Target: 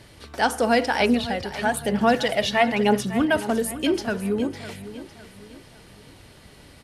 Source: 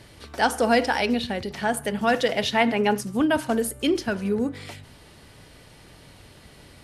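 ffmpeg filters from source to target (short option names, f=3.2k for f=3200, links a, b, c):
-filter_complex "[0:a]asettb=1/sr,asplit=3[a][b][c];[a]atrim=end=1.004[d];[b]atrim=start=1:end=3.39,asetpts=PTS-STARTPTS,afade=t=in:d=0.004:c=qsin,afade=t=out:st=2.386:d=0.004:c=qsin,aphaser=in_gain=1:out_gain=1:delay=1.8:decay=0.44:speed=1:type=sinusoidal[e];[c]atrim=start=3.386[f];[d][e]acrossfade=d=0.004:c1=hsin:c2=qsin[g];[g][f]acrossfade=d=0.004:c1=qsin:c2=hsin,aecho=1:1:555|1110|1665|2220:0.2|0.0798|0.0319|0.0128"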